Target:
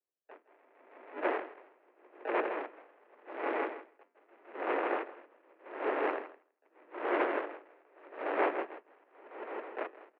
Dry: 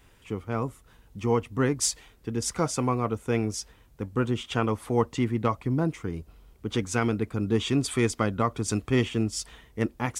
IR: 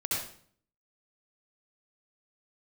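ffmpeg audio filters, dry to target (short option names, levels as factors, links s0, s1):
-filter_complex "[0:a]aeval=exprs='val(0)+0.5*0.0168*sgn(val(0))':c=same,bandreject=f=580:w=12,agate=range=0.00224:threshold=0.0178:ratio=16:detection=peak,equalizer=f=740:t=o:w=0.84:g=4,aresample=11025,acrusher=samples=16:mix=1:aa=0.000001,aresample=44100,asplit=3[s0][s1][s2];[s1]asetrate=29433,aresample=44100,atempo=1.49831,volume=0.158[s3];[s2]asetrate=66075,aresample=44100,atempo=0.66742,volume=0.562[s4];[s0][s3][s4]amix=inputs=3:normalize=0,asplit=2[s5][s6];[s6]acrusher=bits=3:mix=0:aa=0.000001,volume=0.447[s7];[s5][s7]amix=inputs=2:normalize=0,aeval=exprs='(mod(8.41*val(0)+1,2)-1)/8.41':c=same,aecho=1:1:162|324|486|648|810:0.631|0.265|0.111|0.0467|0.0196,highpass=f=230:t=q:w=0.5412,highpass=f=230:t=q:w=1.307,lowpass=f=2300:t=q:w=0.5176,lowpass=f=2300:t=q:w=0.7071,lowpass=f=2300:t=q:w=1.932,afreqshift=110,aeval=exprs='val(0)*pow(10,-36*(0.5-0.5*cos(2*PI*0.83*n/s))/20)':c=same"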